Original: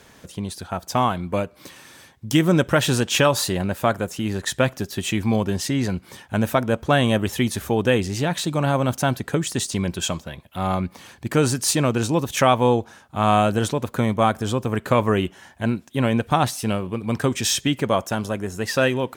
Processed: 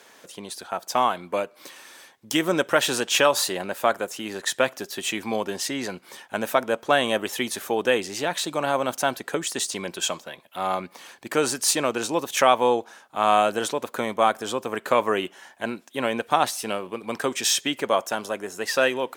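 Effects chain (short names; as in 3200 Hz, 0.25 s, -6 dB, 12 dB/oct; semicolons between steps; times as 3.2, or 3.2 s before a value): HPF 400 Hz 12 dB/oct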